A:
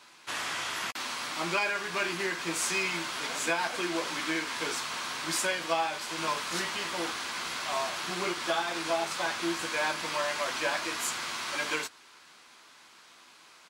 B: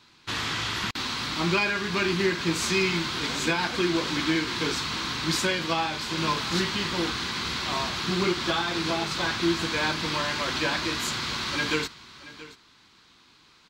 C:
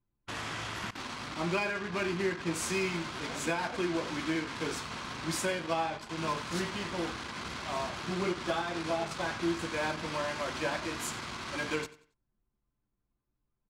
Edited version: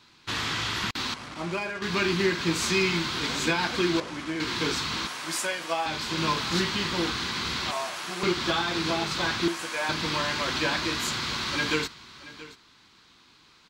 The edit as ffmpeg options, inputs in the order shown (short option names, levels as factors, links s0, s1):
-filter_complex "[2:a]asplit=2[s0][s1];[0:a]asplit=3[s2][s3][s4];[1:a]asplit=6[s5][s6][s7][s8][s9][s10];[s5]atrim=end=1.142[s11];[s0]atrim=start=1.138:end=1.822[s12];[s6]atrim=start=1.818:end=4.002[s13];[s1]atrim=start=3.998:end=4.402[s14];[s7]atrim=start=4.398:end=5.072[s15];[s2]atrim=start=5.068:end=5.862[s16];[s8]atrim=start=5.858:end=7.712[s17];[s3]atrim=start=7.708:end=8.232[s18];[s9]atrim=start=8.228:end=9.482[s19];[s4]atrim=start=9.478:end=9.892[s20];[s10]atrim=start=9.888[s21];[s11][s12]acrossfade=d=0.004:c1=hsin:c2=hsin[s22];[s22][s13]acrossfade=d=0.004:c1=hsin:c2=hsin[s23];[s23][s14]acrossfade=d=0.004:c1=hsin:c2=hsin[s24];[s24][s15]acrossfade=d=0.004:c1=hsin:c2=hsin[s25];[s25][s16]acrossfade=d=0.004:c1=hsin:c2=hsin[s26];[s26][s17]acrossfade=d=0.004:c1=hsin:c2=hsin[s27];[s27][s18]acrossfade=d=0.004:c1=hsin:c2=hsin[s28];[s28][s19]acrossfade=d=0.004:c1=hsin:c2=hsin[s29];[s29][s20]acrossfade=d=0.004:c1=hsin:c2=hsin[s30];[s30][s21]acrossfade=d=0.004:c1=hsin:c2=hsin"